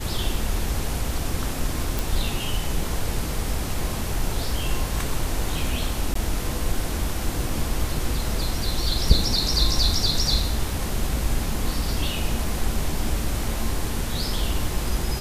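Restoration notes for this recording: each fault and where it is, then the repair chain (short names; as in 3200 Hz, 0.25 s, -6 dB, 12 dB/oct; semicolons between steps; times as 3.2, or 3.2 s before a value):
1.99 pop
6.14–6.15 gap 14 ms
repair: de-click; interpolate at 6.14, 14 ms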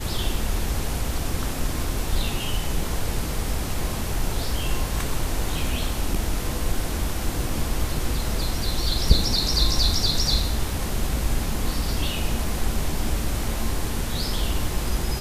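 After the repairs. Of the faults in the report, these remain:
none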